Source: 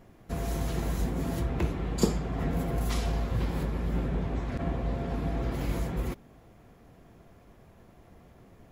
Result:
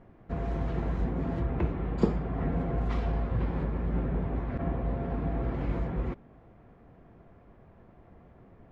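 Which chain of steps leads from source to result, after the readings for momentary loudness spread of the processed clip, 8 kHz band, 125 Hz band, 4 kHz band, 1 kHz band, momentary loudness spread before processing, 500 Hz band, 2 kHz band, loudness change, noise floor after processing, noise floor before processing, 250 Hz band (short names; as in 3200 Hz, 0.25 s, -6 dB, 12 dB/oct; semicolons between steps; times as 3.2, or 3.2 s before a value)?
4 LU, under -20 dB, 0.0 dB, -12.0 dB, 0.0 dB, 5 LU, 0.0 dB, -3.0 dB, 0.0 dB, -56 dBFS, -56 dBFS, 0.0 dB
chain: LPF 1900 Hz 12 dB/oct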